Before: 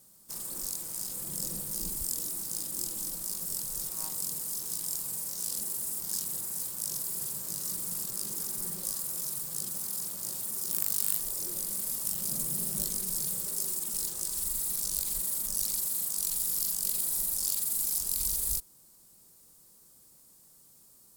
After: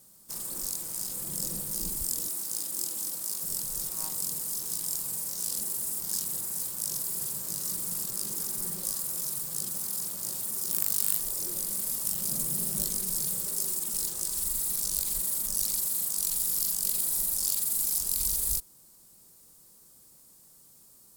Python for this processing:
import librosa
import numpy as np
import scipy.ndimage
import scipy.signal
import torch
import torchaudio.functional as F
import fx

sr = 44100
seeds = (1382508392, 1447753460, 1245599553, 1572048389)

y = fx.highpass(x, sr, hz=350.0, slope=6, at=(2.28, 3.44))
y = y * 10.0 ** (2.0 / 20.0)